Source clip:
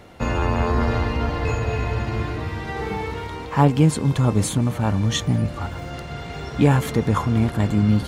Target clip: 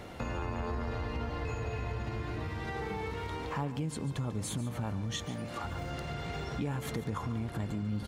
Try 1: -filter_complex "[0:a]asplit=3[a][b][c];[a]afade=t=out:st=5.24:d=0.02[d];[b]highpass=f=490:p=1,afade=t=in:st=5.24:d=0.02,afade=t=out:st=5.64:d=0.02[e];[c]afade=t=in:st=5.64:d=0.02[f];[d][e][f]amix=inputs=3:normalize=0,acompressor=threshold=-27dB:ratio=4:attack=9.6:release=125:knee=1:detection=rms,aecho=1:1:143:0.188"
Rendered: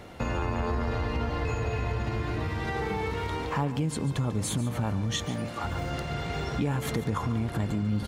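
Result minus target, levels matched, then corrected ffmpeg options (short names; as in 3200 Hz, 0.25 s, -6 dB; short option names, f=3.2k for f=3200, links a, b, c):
compressor: peak gain reduction -6.5 dB
-filter_complex "[0:a]asplit=3[a][b][c];[a]afade=t=out:st=5.24:d=0.02[d];[b]highpass=f=490:p=1,afade=t=in:st=5.24:d=0.02,afade=t=out:st=5.64:d=0.02[e];[c]afade=t=in:st=5.64:d=0.02[f];[d][e][f]amix=inputs=3:normalize=0,acompressor=threshold=-35.5dB:ratio=4:attack=9.6:release=125:knee=1:detection=rms,aecho=1:1:143:0.188"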